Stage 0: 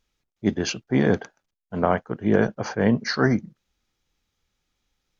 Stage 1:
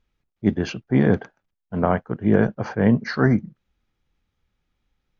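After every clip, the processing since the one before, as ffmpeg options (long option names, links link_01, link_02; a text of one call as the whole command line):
ffmpeg -i in.wav -af "bass=frequency=250:gain=5,treble=frequency=4000:gain=-13" out.wav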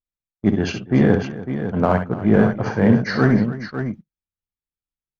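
ffmpeg -i in.wav -filter_complex "[0:a]asplit=2[link_01][link_02];[link_02]asoftclip=type=hard:threshold=-18.5dB,volume=-7dB[link_03];[link_01][link_03]amix=inputs=2:normalize=0,aecho=1:1:55|65|291|552:0.266|0.355|0.158|0.335,agate=range=-29dB:threshold=-33dB:ratio=16:detection=peak" out.wav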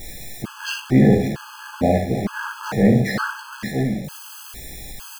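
ffmpeg -i in.wav -af "aeval=exprs='val(0)+0.5*0.0708*sgn(val(0))':channel_layout=same,aecho=1:1:15|57:0.531|0.398,afftfilt=real='re*gt(sin(2*PI*1.1*pts/sr)*(1-2*mod(floor(b*sr/1024/840),2)),0)':imag='im*gt(sin(2*PI*1.1*pts/sr)*(1-2*mod(floor(b*sr/1024/840),2)),0)':win_size=1024:overlap=0.75,volume=-2dB" out.wav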